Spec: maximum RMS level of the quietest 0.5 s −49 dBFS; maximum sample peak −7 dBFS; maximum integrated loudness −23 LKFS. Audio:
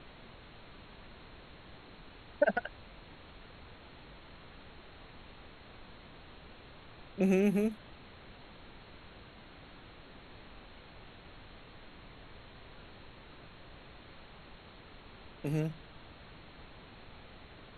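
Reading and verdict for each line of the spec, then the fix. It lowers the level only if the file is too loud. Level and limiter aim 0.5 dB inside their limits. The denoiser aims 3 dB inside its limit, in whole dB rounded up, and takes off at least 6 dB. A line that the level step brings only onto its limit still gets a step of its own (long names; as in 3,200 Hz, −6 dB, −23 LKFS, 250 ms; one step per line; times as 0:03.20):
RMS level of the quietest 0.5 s −53 dBFS: in spec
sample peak −14.5 dBFS: in spec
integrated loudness −33.0 LKFS: in spec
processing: no processing needed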